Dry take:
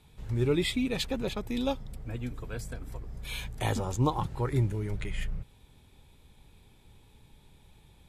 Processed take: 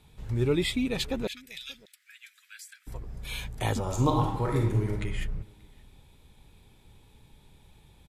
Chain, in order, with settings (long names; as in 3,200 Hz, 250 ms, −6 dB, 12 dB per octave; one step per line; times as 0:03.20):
0:01.27–0:02.87: Butterworth high-pass 1,600 Hz 48 dB per octave
0:03.82–0:04.91: thrown reverb, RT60 0.88 s, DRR 0.5 dB
slap from a distant wall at 100 metres, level −25 dB
level +1 dB